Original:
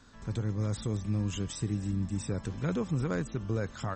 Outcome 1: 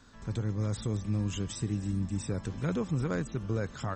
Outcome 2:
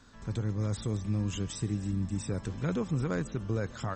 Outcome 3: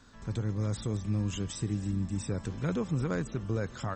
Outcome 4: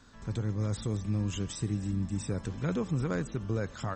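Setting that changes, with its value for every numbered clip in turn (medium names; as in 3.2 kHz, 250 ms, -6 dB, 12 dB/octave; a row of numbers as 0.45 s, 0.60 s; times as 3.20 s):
modulated delay, time: 392 ms, 140 ms, 215 ms, 83 ms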